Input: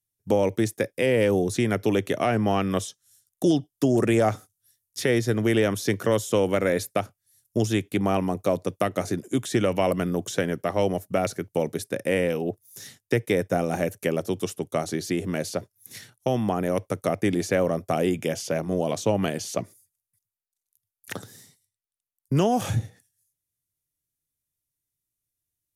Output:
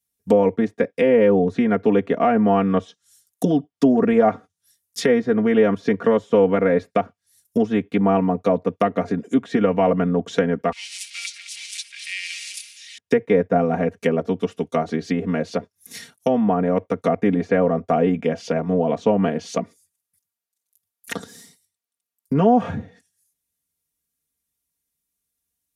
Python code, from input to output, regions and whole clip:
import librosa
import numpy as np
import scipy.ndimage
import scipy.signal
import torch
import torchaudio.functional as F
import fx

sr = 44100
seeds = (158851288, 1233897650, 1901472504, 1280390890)

y = fx.chain(x, sr, fx.crossing_spikes(level_db=-17.0),
    fx.ellip_bandpass(low_hz=2300.0, high_hz=10000.0, order=3, stop_db=60),
    fx.echo_single(ms=211, db=-10.5), at=(10.72, 12.98))
y = fx.env_lowpass_down(y, sr, base_hz=1600.0, full_db=-22.5)
y = scipy.signal.sosfilt(scipy.signal.butter(2, 48.0, 'highpass', fs=sr, output='sos'), y)
y = y + 0.9 * np.pad(y, (int(4.3 * sr / 1000.0), 0))[:len(y)]
y = F.gain(torch.from_numpy(y), 3.0).numpy()